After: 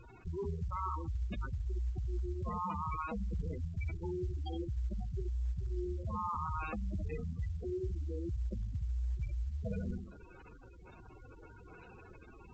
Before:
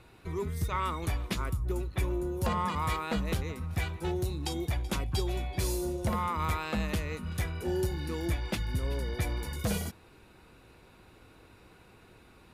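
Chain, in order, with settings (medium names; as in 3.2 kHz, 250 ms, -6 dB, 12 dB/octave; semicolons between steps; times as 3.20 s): bass shelf 120 Hz +11.5 dB; in parallel at -5.5 dB: Schmitt trigger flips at -32 dBFS; on the sum: overdrive pedal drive 11 dB, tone 5.1 kHz, clips at -12.5 dBFS; flutter echo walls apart 11.4 m, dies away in 0.59 s; reverse; compression 16:1, threshold -32 dBFS, peak gain reduction 13.5 dB; reverse; spectral gate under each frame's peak -10 dB strong; µ-law 128 kbps 16 kHz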